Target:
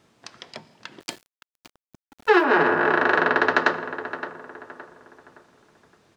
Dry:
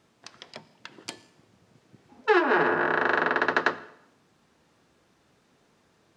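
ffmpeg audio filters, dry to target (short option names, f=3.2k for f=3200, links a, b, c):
-filter_complex "[0:a]asplit=2[a][b];[b]adelay=567,lowpass=f=2.3k:p=1,volume=-11dB,asplit=2[c][d];[d]adelay=567,lowpass=f=2.3k:p=1,volume=0.39,asplit=2[e][f];[f]adelay=567,lowpass=f=2.3k:p=1,volume=0.39,asplit=2[g][h];[h]adelay=567,lowpass=f=2.3k:p=1,volume=0.39[i];[a][c][e][g][i]amix=inputs=5:normalize=0,asettb=1/sr,asplit=3[j][k][l];[j]atrim=end=1.004[m];[k]atrim=start=1:end=2.44,asetpts=PTS-STARTPTS,afade=t=in:d=0.004:c=qsin,afade=t=out:st=1.436:d=0.004:c=qsin,aeval=exprs='val(0)*gte(abs(val(0)),0.00473)':c=same[n];[l]atrim=start=2.436[o];[m][n]acrossfade=d=0.004:c1=hsin:c2=qsin[p];[p][o]acrossfade=d=0.004:c1=qsin:c2=hsin,volume=4dB"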